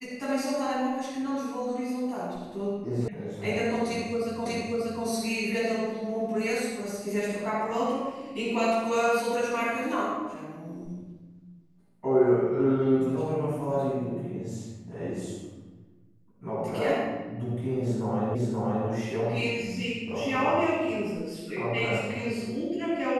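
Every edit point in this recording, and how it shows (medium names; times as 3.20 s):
3.08 s: sound stops dead
4.46 s: repeat of the last 0.59 s
18.35 s: repeat of the last 0.53 s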